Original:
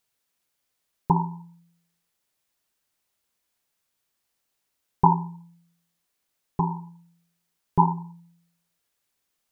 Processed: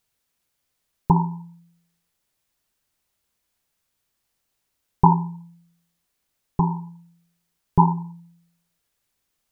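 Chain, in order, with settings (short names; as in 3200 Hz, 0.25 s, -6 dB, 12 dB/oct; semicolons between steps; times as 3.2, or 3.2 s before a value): low shelf 140 Hz +9 dB; gain +1.5 dB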